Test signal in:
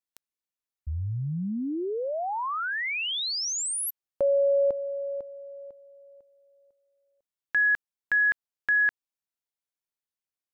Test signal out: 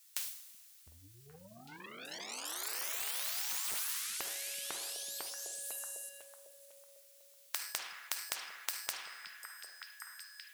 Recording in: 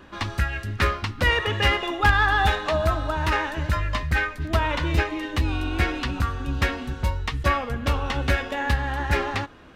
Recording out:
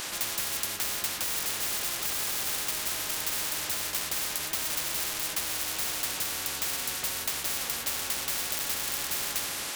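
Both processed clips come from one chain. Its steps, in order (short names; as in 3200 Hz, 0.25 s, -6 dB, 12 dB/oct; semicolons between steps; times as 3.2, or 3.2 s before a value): two-slope reverb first 0.52 s, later 2.2 s, from -18 dB, DRR 6 dB; overdrive pedal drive 31 dB, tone 5300 Hz, clips at -5.5 dBFS; pre-emphasis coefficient 0.97; on a send: delay with a stepping band-pass 0.377 s, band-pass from 180 Hz, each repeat 1.4 oct, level -8 dB; on the sum: spectral compressor 10:1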